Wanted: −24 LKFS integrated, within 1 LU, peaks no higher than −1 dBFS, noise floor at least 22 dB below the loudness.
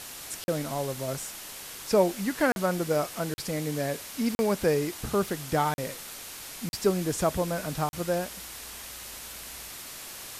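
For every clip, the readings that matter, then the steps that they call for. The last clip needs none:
number of dropouts 7; longest dropout 41 ms; background noise floor −42 dBFS; target noise floor −52 dBFS; integrated loudness −30.0 LKFS; sample peak −10.5 dBFS; target loudness −24.0 LKFS
→ repair the gap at 0:00.44/0:02.52/0:03.34/0:04.35/0:05.74/0:06.69/0:07.89, 41 ms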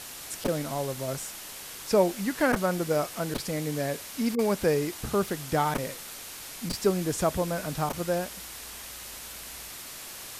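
number of dropouts 0; background noise floor −42 dBFS; target noise floor −52 dBFS
→ broadband denoise 10 dB, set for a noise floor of −42 dBFS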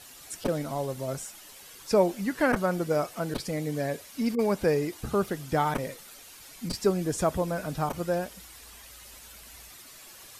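background noise floor −49 dBFS; target noise floor −51 dBFS
→ broadband denoise 6 dB, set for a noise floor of −49 dBFS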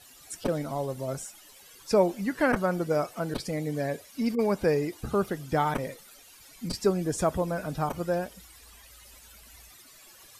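background noise floor −53 dBFS; integrated loudness −29.0 LKFS; sample peak −11.0 dBFS; target loudness −24.0 LKFS
→ level +5 dB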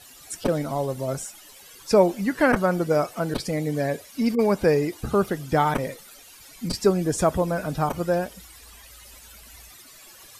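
integrated loudness −24.0 LKFS; sample peak −6.0 dBFS; background noise floor −48 dBFS

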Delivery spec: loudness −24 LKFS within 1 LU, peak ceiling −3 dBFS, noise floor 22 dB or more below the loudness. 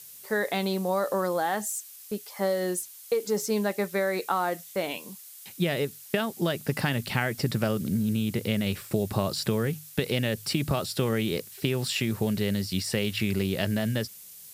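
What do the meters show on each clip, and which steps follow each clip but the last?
background noise floor −47 dBFS; target noise floor −51 dBFS; integrated loudness −28.5 LKFS; sample peak −9.0 dBFS; target loudness −24.0 LKFS
→ broadband denoise 6 dB, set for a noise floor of −47 dBFS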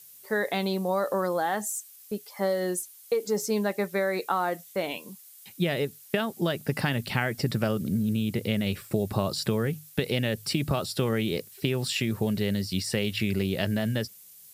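background noise floor −51 dBFS; integrated loudness −28.5 LKFS; sample peak −9.0 dBFS; target loudness −24.0 LKFS
→ level +4.5 dB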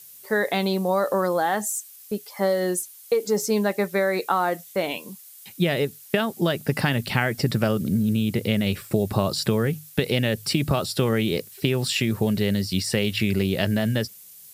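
integrated loudness −24.0 LKFS; sample peak −4.5 dBFS; background noise floor −46 dBFS

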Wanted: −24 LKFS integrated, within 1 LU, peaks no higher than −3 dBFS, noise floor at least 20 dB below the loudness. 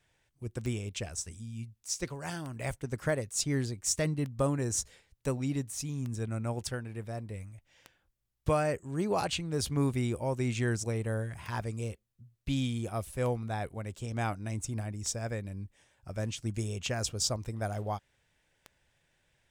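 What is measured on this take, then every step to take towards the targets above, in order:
number of clicks 11; integrated loudness −34.0 LKFS; sample peak −16.0 dBFS; target loudness −24.0 LKFS
→ click removal
level +10 dB

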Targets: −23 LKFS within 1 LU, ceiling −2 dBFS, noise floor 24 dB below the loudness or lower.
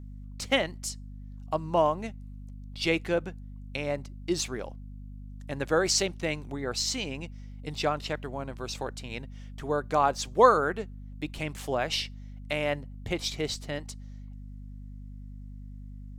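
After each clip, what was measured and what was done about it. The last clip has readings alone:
mains hum 50 Hz; hum harmonics up to 250 Hz; level of the hum −40 dBFS; integrated loudness −29.5 LKFS; sample peak −5.0 dBFS; target loudness −23.0 LKFS
→ mains-hum notches 50/100/150/200/250 Hz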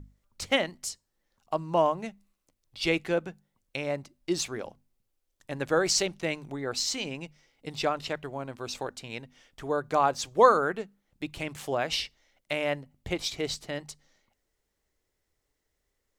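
mains hum none found; integrated loudness −29.5 LKFS; sample peak −5.0 dBFS; target loudness −23.0 LKFS
→ level +6.5 dB
brickwall limiter −2 dBFS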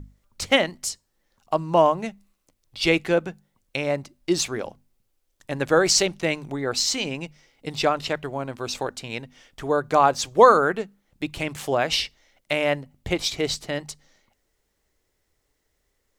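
integrated loudness −23.0 LKFS; sample peak −2.0 dBFS; background noise floor −73 dBFS

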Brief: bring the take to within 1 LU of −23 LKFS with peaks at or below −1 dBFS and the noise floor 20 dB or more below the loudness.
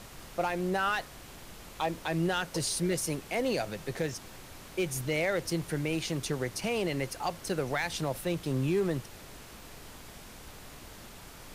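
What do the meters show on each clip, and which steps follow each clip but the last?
share of clipped samples 0.4%; peaks flattened at −21.5 dBFS; background noise floor −49 dBFS; target noise floor −52 dBFS; integrated loudness −32.0 LKFS; sample peak −21.5 dBFS; target loudness −23.0 LKFS
→ clipped peaks rebuilt −21.5 dBFS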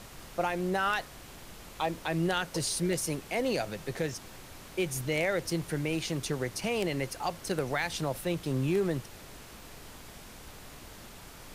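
share of clipped samples 0.0%; background noise floor −49 dBFS; target noise floor −52 dBFS
→ noise reduction from a noise print 6 dB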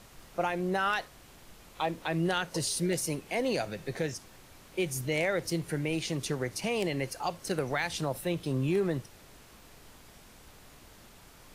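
background noise floor −55 dBFS; integrated loudness −32.0 LKFS; sample peak −13.0 dBFS; target loudness −23.0 LKFS
→ level +9 dB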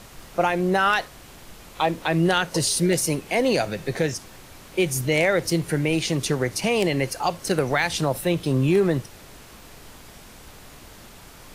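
integrated loudness −23.0 LKFS; sample peak −4.0 dBFS; background noise floor −46 dBFS

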